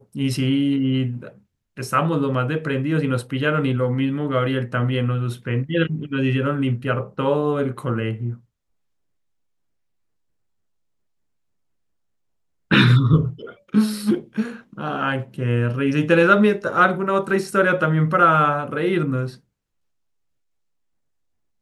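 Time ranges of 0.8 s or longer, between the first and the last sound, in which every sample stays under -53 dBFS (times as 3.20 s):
8.44–12.71 s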